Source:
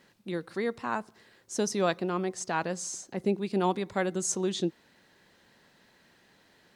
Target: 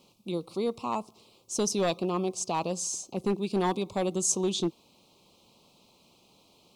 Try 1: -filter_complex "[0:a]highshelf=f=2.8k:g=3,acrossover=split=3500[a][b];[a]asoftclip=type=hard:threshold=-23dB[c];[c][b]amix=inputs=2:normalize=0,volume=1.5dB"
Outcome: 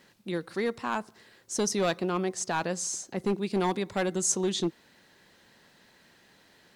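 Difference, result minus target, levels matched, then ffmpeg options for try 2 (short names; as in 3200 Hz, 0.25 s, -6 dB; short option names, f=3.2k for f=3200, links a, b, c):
2000 Hz band +7.0 dB
-filter_complex "[0:a]asuperstop=centerf=1700:order=8:qfactor=1.5,highshelf=f=2.8k:g=3,acrossover=split=3500[a][b];[a]asoftclip=type=hard:threshold=-23dB[c];[c][b]amix=inputs=2:normalize=0,volume=1.5dB"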